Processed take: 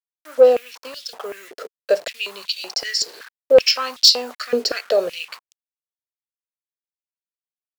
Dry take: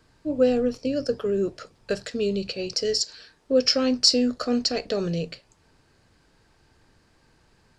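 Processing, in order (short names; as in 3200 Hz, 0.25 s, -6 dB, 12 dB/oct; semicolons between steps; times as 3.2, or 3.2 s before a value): level-crossing sampler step -41 dBFS; sine folder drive 5 dB, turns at -5 dBFS; stepped high-pass 5.3 Hz 430–3500 Hz; gain -5.5 dB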